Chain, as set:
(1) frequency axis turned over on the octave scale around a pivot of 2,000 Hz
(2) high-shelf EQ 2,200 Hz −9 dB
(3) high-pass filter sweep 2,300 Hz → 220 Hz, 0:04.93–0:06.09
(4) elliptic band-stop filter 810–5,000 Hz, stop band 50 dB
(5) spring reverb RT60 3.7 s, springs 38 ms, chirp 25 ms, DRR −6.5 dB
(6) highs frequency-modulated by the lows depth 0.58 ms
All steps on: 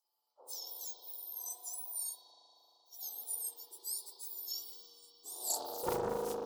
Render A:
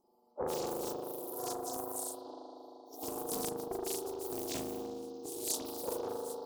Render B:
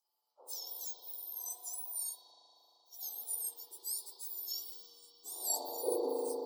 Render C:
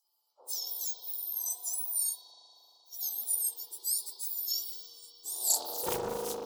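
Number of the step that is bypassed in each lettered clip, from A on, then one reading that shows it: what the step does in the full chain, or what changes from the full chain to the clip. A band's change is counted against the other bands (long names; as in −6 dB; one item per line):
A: 3, 250 Hz band +8.0 dB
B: 6, 1 kHz band −5.0 dB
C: 2, 8 kHz band +8.0 dB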